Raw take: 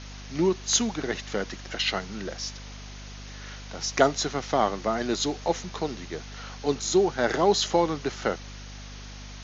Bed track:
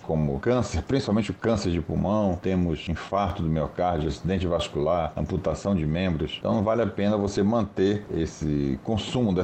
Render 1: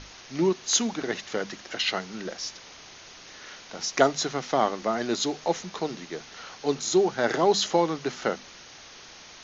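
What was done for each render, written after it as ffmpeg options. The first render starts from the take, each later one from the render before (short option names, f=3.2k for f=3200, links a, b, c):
-af "bandreject=f=50:t=h:w=6,bandreject=f=100:t=h:w=6,bandreject=f=150:t=h:w=6,bandreject=f=200:t=h:w=6,bandreject=f=250:t=h:w=6"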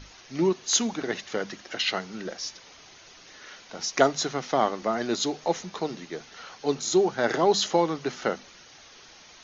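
-af "afftdn=nr=6:nf=-47"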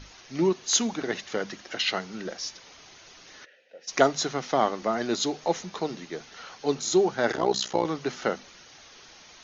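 -filter_complex "[0:a]asplit=3[a][b][c];[a]afade=t=out:st=3.44:d=0.02[d];[b]asplit=3[e][f][g];[e]bandpass=f=530:t=q:w=8,volume=0dB[h];[f]bandpass=f=1.84k:t=q:w=8,volume=-6dB[i];[g]bandpass=f=2.48k:t=q:w=8,volume=-9dB[j];[h][i][j]amix=inputs=3:normalize=0,afade=t=in:st=3.44:d=0.02,afade=t=out:st=3.87:d=0.02[k];[c]afade=t=in:st=3.87:d=0.02[l];[d][k][l]amix=inputs=3:normalize=0,asettb=1/sr,asplit=3[m][n][o];[m]atrim=end=7.324[p];[n]atrim=start=7.32:end=7.85,asetpts=PTS-STARTPTS,afade=t=in:d=0.004:c=qsin,afade=t=out:st=0.526:d=0.004:c=qsin,tremolo=f=62:d=0.857[q];[o]atrim=start=7.846[r];[p][q]acrossfade=d=0.004:c1=hsin:c2=qsin[s];[s][r]acrossfade=d=0.004:c1=qsin:c2=hsin"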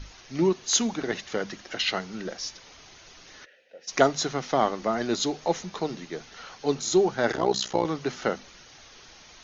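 -af "lowshelf=f=84:g=10"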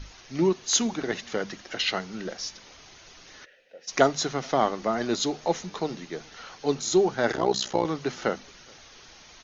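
-filter_complex "[0:a]asplit=2[a][b];[b]adelay=425.7,volume=-29dB,highshelf=f=4k:g=-9.58[c];[a][c]amix=inputs=2:normalize=0"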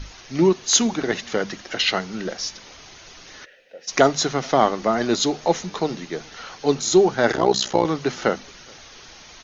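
-af "volume=6dB,alimiter=limit=-2dB:level=0:latency=1"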